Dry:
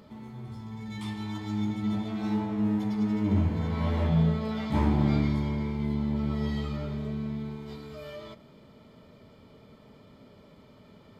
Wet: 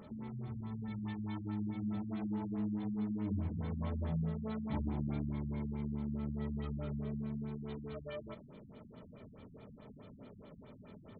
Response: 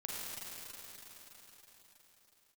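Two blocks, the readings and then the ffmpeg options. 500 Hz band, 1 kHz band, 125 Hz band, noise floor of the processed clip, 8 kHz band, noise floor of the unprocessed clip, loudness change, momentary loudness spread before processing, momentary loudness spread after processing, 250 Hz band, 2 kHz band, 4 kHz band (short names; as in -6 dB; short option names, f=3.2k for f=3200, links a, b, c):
-9.5 dB, -12.0 dB, -10.0 dB, -56 dBFS, n/a, -55 dBFS, -10.0 dB, 17 LU, 18 LU, -9.5 dB, -13.0 dB, -15.5 dB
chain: -af "acompressor=threshold=-39dB:ratio=2.5,afftfilt=real='re*lt(b*sr/1024,250*pow(4500/250,0.5+0.5*sin(2*PI*4.7*pts/sr)))':imag='im*lt(b*sr/1024,250*pow(4500/250,0.5+0.5*sin(2*PI*4.7*pts/sr)))':win_size=1024:overlap=0.75"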